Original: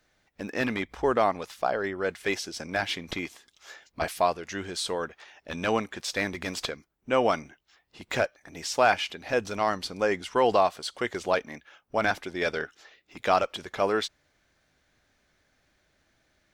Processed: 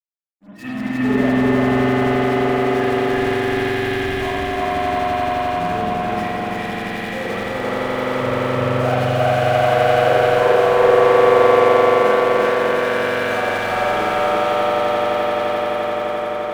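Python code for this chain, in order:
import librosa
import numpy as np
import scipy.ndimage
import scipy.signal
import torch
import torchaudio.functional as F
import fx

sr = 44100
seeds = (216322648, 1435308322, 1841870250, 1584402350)

p1 = fx.bin_expand(x, sr, power=3.0)
p2 = fx.low_shelf(p1, sr, hz=420.0, db=5.0)
p3 = fx.echo_swell(p2, sr, ms=86, loudest=8, wet_db=-6.0)
p4 = np.repeat(scipy.signal.resample_poly(p3, 1, 6), 6)[:len(p3)]
p5 = fx.lowpass(p4, sr, hz=1800.0, slope=6)
p6 = fx.hum_notches(p5, sr, base_hz=60, count=7)
p7 = fx.fuzz(p6, sr, gain_db=50.0, gate_db=-57.0)
p8 = p6 + (p7 * librosa.db_to_amplitude(-9.0))
p9 = p8 + 10.0 ** (-3.5 / 20.0) * np.pad(p8, (int(344 * sr / 1000.0), 0))[:len(p8)]
p10 = fx.rev_spring(p9, sr, rt60_s=1.3, pass_ms=(47,), chirp_ms=65, drr_db=-9.5)
p11 = fx.band_widen(p10, sr, depth_pct=70)
y = p11 * librosa.db_to_amplitude(-10.5)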